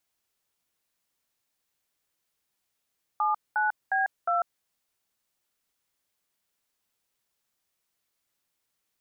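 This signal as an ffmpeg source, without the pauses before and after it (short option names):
-f lavfi -i "aevalsrc='0.0562*clip(min(mod(t,0.358),0.146-mod(t,0.358))/0.002,0,1)*(eq(floor(t/0.358),0)*(sin(2*PI*852*mod(t,0.358))+sin(2*PI*1209*mod(t,0.358)))+eq(floor(t/0.358),1)*(sin(2*PI*852*mod(t,0.358))+sin(2*PI*1477*mod(t,0.358)))+eq(floor(t/0.358),2)*(sin(2*PI*770*mod(t,0.358))+sin(2*PI*1633*mod(t,0.358)))+eq(floor(t/0.358),3)*(sin(2*PI*697*mod(t,0.358))+sin(2*PI*1336*mod(t,0.358))))':d=1.432:s=44100"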